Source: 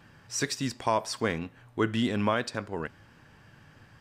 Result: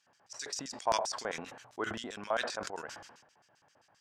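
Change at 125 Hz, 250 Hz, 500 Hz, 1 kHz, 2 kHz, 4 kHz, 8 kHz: -19.0 dB, -15.5 dB, -5.5 dB, -4.0 dB, -5.0 dB, -4.0 dB, -4.0 dB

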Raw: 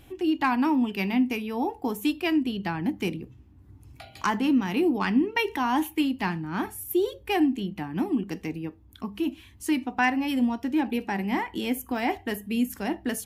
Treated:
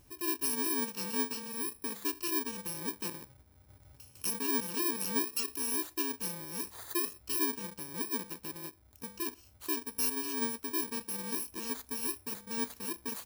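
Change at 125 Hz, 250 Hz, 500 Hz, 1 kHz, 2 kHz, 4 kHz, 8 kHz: -14.5 dB, -15.0 dB, -10.5 dB, -13.5 dB, -11.5 dB, -3.5 dB, +8.0 dB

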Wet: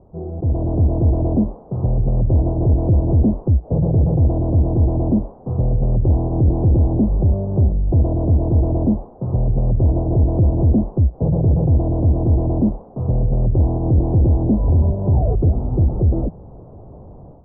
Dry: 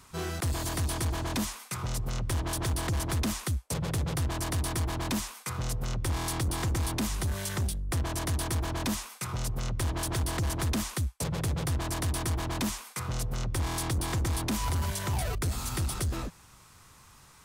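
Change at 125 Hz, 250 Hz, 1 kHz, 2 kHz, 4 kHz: +15.5 dB, +15.5 dB, +3.0 dB, under -30 dB, under -40 dB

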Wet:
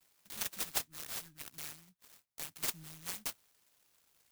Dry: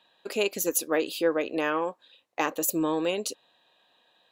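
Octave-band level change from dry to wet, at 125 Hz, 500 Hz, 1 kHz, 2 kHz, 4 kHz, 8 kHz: -10.5 dB, -29.5 dB, -19.0 dB, -15.0 dB, -7.5 dB, -8.5 dB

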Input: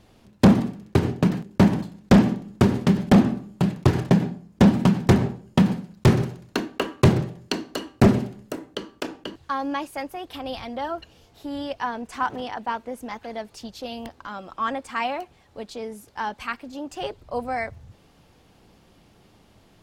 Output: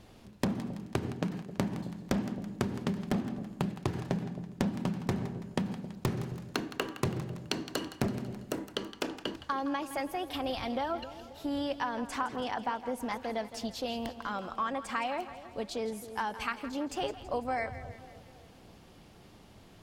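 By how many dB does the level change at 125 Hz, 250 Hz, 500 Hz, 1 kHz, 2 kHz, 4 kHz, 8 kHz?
-14.5 dB, -13.0 dB, -9.0 dB, -7.0 dB, -7.0 dB, -5.5 dB, -5.5 dB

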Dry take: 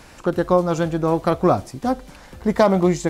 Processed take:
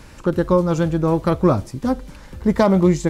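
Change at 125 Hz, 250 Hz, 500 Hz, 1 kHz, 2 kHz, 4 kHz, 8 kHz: +4.5 dB, +3.0 dB, 0.0 dB, -2.5 dB, -1.0 dB, -1.0 dB, -1.0 dB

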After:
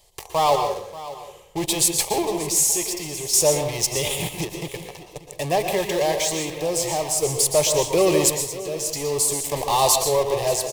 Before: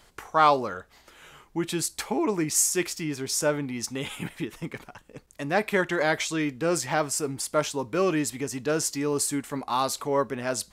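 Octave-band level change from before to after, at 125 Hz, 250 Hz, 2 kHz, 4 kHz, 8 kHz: +4.0 dB, -0.5 dB, -2.0 dB, +8.5 dB, +8.5 dB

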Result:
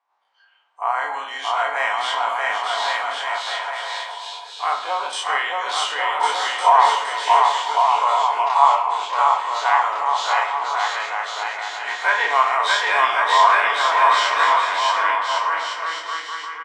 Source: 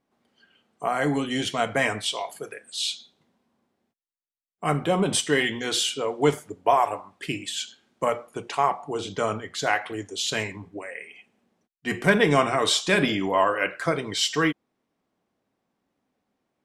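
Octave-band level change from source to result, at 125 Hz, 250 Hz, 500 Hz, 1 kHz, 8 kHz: under -40 dB, under -20 dB, -1.0 dB, +12.5 dB, -2.0 dB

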